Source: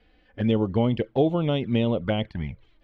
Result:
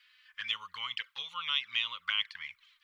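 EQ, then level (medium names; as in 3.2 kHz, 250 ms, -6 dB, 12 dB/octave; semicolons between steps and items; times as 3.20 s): elliptic high-pass 1.1 kHz, stop band 40 dB; treble shelf 2.7 kHz +11 dB; 0.0 dB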